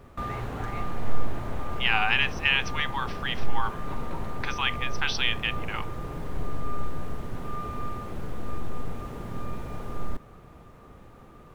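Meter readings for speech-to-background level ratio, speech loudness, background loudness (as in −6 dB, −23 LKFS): 9.0 dB, −27.5 LKFS, −36.5 LKFS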